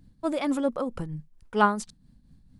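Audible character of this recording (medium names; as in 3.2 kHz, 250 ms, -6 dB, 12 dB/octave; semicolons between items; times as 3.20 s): tremolo triangle 4.4 Hz, depth 65%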